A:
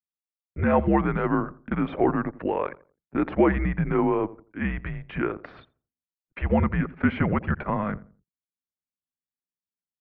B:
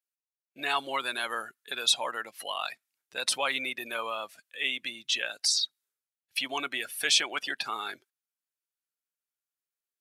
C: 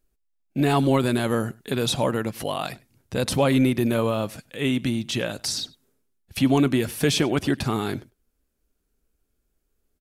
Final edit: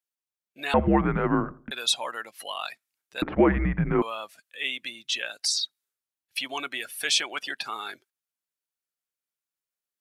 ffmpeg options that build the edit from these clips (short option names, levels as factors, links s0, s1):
-filter_complex "[0:a]asplit=2[s0][s1];[1:a]asplit=3[s2][s3][s4];[s2]atrim=end=0.742[s5];[s0]atrim=start=0.738:end=1.712[s6];[s3]atrim=start=1.708:end=3.222[s7];[s1]atrim=start=3.218:end=4.022[s8];[s4]atrim=start=4.018[s9];[s5][s6]acrossfade=d=0.004:c1=hsin:c2=hsin[s10];[s10][s7]acrossfade=d=0.004:c1=hsin:c2=hsin[s11];[s11][s8]acrossfade=d=0.004:c1=hsin:c2=hsin[s12];[s12][s9]acrossfade=d=0.004:c1=hsin:c2=hsin"